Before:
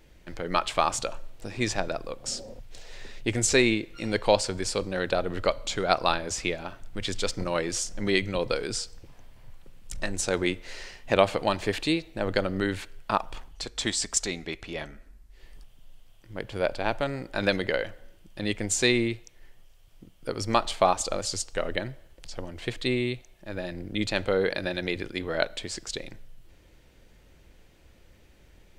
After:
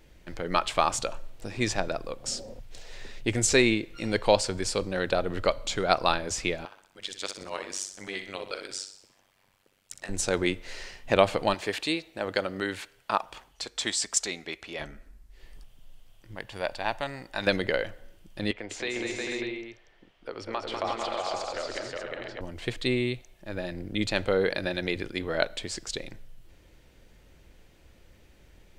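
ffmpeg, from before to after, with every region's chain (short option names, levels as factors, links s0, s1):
-filter_complex "[0:a]asettb=1/sr,asplit=3[s0][s1][s2];[s0]atrim=end=6.654[s3];[s1]atrim=start=6.65:end=10.09,asetpts=PTS-STARTPTS,afade=t=in:d=0.004:c=qsin,afade=t=out:st=3.436:d=0.004:c=qsin,highpass=f=780:p=1,tremolo=f=96:d=0.974,aecho=1:1:62|124|186|248|310|372:0.335|0.167|0.0837|0.0419|0.0209|0.0105,atrim=end_sample=151704[s4];[s2]atrim=start=10.086[s5];[s3][s4]acrossfade=d=0.004:c1=hsin:c2=qsin[s6];[s6][s5]acrossfade=d=0.004:c1=qsin:c2=hsin,asettb=1/sr,asplit=3[s7][s8][s9];[s7]atrim=end=11.544[s10];[s8]atrim=start=11.54:end=14.8,asetpts=PTS-STARTPTS,afade=t=in:d=0.004:c=qsin,afade=t=out:st=3.256:d=0.004:c=qsin,highpass=44,lowshelf=f=250:g=-12[s11];[s9]atrim=start=14.796[s12];[s10][s11]acrossfade=d=0.004:c1=hsin:c2=qsin[s13];[s13][s12]acrossfade=d=0.004:c1=qsin:c2=hsin,asettb=1/sr,asplit=3[s14][s15][s16];[s14]atrim=end=16.354[s17];[s15]atrim=start=16.35:end=17.47,asetpts=PTS-STARTPTS,afade=t=in:d=0.004:c=qsin,afade=t=out:st=1.116:d=0.004:c=qsin,lowshelf=f=410:g=-10.5,aecho=1:1:1.1:0.36,atrim=end_sample=49392[s18];[s16]atrim=start=17.466[s19];[s17][s18]acrossfade=d=0.004:c1=hsin:c2=qsin[s20];[s20][s19]acrossfade=d=0.004:c1=qsin:c2=hsin,asettb=1/sr,asplit=3[s21][s22][s23];[s21]atrim=end=18.514[s24];[s22]atrim=start=18.51:end=22.41,asetpts=PTS-STARTPTS,afade=t=in:d=0.004:c=qsin,afade=t=out:st=3.896:d=0.004:c=qsin,acrossover=split=330 4100:gain=0.2 1 0.0794[s25][s26][s27];[s25][s26][s27]amix=inputs=3:normalize=0,acompressor=threshold=0.02:ratio=2:attack=3.2:release=140:knee=1:detection=peak,aecho=1:1:198|290|360|446|495|596:0.562|0.141|0.708|0.501|0.473|0.447,atrim=end_sample=171990[s28];[s23]atrim=start=22.406[s29];[s24][s28]acrossfade=d=0.004:c1=hsin:c2=qsin[s30];[s30][s29]acrossfade=d=0.004:c1=qsin:c2=hsin"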